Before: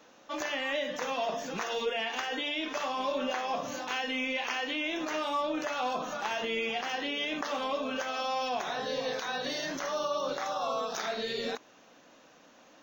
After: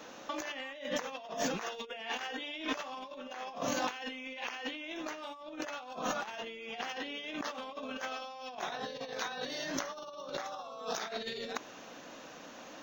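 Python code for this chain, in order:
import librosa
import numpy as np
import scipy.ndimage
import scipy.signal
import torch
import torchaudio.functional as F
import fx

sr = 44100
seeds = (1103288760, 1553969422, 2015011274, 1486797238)

y = fx.over_compress(x, sr, threshold_db=-39.0, ratio=-0.5)
y = F.gain(torch.from_numpy(y), 1.0).numpy()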